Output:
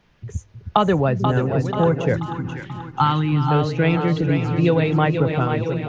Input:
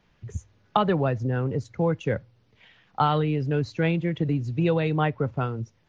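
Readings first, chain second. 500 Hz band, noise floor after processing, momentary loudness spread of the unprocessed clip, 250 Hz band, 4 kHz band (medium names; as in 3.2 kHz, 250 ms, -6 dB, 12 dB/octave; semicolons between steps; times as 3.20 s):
+6.0 dB, -52 dBFS, 9 LU, +6.5 dB, +6.5 dB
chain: chunks repeated in reverse 650 ms, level -11 dB; two-band feedback delay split 330 Hz, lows 315 ms, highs 485 ms, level -6.5 dB; time-frequency box 2.15–3.50 s, 380–770 Hz -15 dB; trim +5 dB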